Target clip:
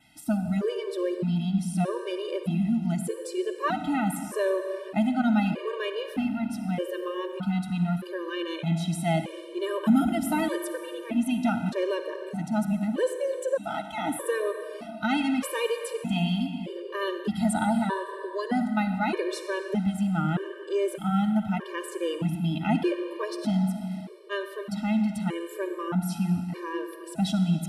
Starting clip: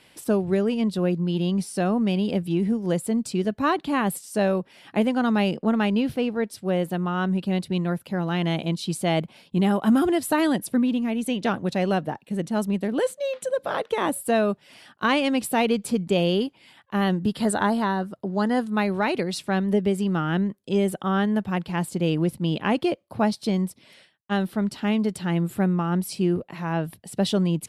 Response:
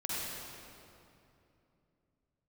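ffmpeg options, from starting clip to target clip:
-filter_complex "[0:a]asplit=2[link_01][link_02];[1:a]atrim=start_sample=2205[link_03];[link_02][link_03]afir=irnorm=-1:irlink=0,volume=-9dB[link_04];[link_01][link_04]amix=inputs=2:normalize=0,adynamicequalizer=threshold=0.00178:dfrequency=4600:dqfactor=4.8:tfrequency=4600:tqfactor=4.8:attack=5:release=100:ratio=0.375:range=3.5:mode=cutabove:tftype=bell,afftfilt=real='re*gt(sin(2*PI*0.81*pts/sr)*(1-2*mod(floor(b*sr/1024/310),2)),0)':imag='im*gt(sin(2*PI*0.81*pts/sr)*(1-2*mod(floor(b*sr/1024/310),2)),0)':win_size=1024:overlap=0.75,volume=-3.5dB"

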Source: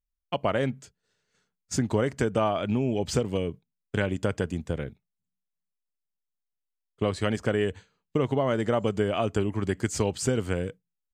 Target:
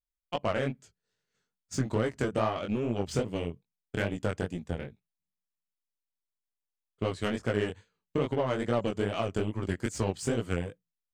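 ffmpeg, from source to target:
ffmpeg -i in.wav -af "aeval=exprs='0.266*(cos(1*acos(clip(val(0)/0.266,-1,1)))-cos(1*PI/2))+0.0168*(cos(7*acos(clip(val(0)/0.266,-1,1)))-cos(7*PI/2))':channel_layout=same,flanger=delay=17:depth=6.7:speed=2.4" out.wav

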